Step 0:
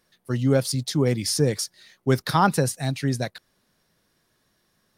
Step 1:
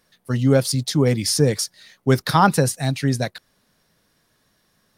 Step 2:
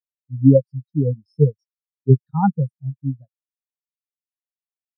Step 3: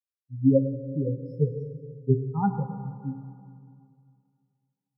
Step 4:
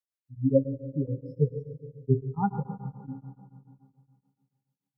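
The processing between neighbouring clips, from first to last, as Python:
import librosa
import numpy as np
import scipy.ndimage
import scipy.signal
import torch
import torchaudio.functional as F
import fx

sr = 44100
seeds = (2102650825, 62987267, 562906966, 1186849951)

y1 = fx.notch(x, sr, hz=360.0, q=12.0)
y1 = y1 * 10.0 ** (4.0 / 20.0)
y2 = fx.spectral_expand(y1, sr, expansion=4.0)
y3 = fx.rev_plate(y2, sr, seeds[0], rt60_s=2.3, hf_ratio=0.65, predelay_ms=0, drr_db=6.5)
y3 = y3 * 10.0 ** (-8.0 / 20.0)
y4 = y3 * np.abs(np.cos(np.pi * 7.0 * np.arange(len(y3)) / sr))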